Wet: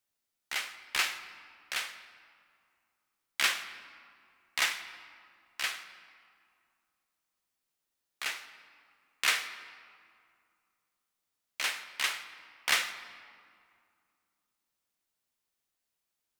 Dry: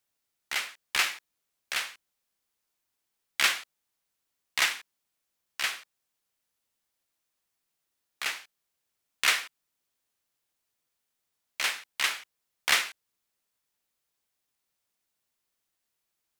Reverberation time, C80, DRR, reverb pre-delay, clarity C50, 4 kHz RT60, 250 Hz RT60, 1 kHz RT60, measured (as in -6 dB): 2.2 s, 12.5 dB, 9.5 dB, 3 ms, 11.5 dB, 1.4 s, 2.9 s, 2.3 s